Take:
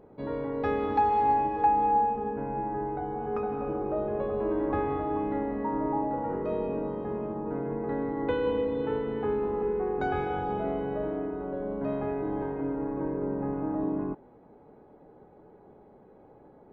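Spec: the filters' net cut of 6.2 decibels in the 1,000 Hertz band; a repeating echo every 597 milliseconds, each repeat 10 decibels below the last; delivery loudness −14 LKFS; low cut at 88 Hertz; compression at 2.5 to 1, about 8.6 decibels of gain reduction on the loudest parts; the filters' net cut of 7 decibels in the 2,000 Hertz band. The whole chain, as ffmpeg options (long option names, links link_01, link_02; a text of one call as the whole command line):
ffmpeg -i in.wav -af "highpass=88,equalizer=frequency=1000:width_type=o:gain=-7,equalizer=frequency=2000:width_type=o:gain=-6.5,acompressor=threshold=-39dB:ratio=2.5,aecho=1:1:597|1194|1791|2388:0.316|0.101|0.0324|0.0104,volume=25.5dB" out.wav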